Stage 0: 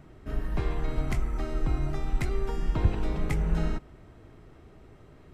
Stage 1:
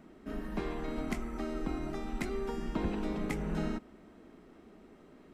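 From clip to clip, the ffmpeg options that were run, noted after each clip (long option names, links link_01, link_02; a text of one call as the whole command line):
ffmpeg -i in.wav -af "lowshelf=frequency=160:width_type=q:width=3:gain=-9.5,volume=-3dB" out.wav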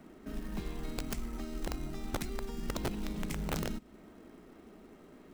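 ffmpeg -i in.wav -filter_complex "[0:a]acrossover=split=210|3000[link_01][link_02][link_03];[link_02]acompressor=threshold=-47dB:ratio=6[link_04];[link_01][link_04][link_03]amix=inputs=3:normalize=0,acrusher=bits=5:mode=log:mix=0:aa=0.000001,aeval=exprs='(mod(26.6*val(0)+1,2)-1)/26.6':channel_layout=same,volume=1.5dB" out.wav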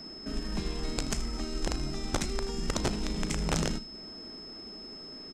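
ffmpeg -i in.wav -af "lowpass=frequency=7400:width_type=q:width=2.1,aeval=exprs='val(0)+0.00355*sin(2*PI*5200*n/s)':channel_layout=same,aecho=1:1:36|79:0.178|0.178,volume=5dB" out.wav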